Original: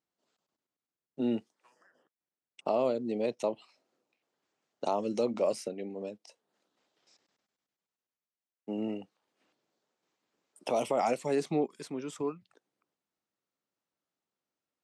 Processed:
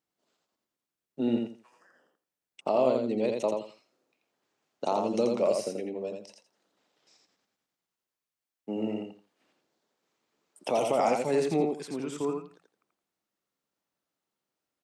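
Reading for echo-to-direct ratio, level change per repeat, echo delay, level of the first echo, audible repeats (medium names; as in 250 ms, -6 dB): -4.0 dB, -13.0 dB, 84 ms, -4.0 dB, 3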